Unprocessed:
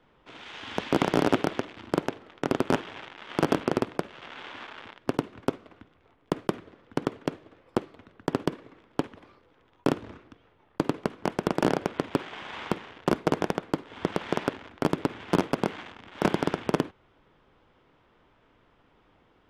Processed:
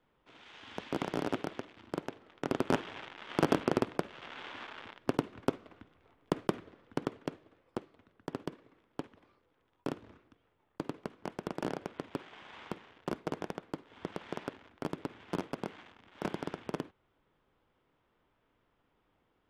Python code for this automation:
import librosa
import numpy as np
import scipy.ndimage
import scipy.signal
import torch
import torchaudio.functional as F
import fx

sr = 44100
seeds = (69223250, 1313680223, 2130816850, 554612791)

y = fx.gain(x, sr, db=fx.line((2.02, -11.0), (2.85, -3.5), (6.59, -3.5), (7.83, -12.0)))